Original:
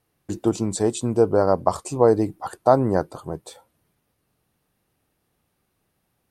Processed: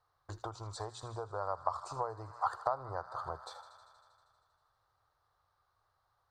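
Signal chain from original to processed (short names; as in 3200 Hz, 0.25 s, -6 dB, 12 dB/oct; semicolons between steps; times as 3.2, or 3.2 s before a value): notches 60/120/180/240 Hz; thin delay 79 ms, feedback 79%, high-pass 1500 Hz, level -12.5 dB; compressor 12:1, threshold -27 dBFS, peak gain reduction 17.5 dB; EQ curve 110 Hz 0 dB, 210 Hz -26 dB, 540 Hz -2 dB, 1200 Hz +12 dB, 2600 Hz -13 dB, 4100 Hz +2 dB, 10000 Hz -16 dB; gain -5.5 dB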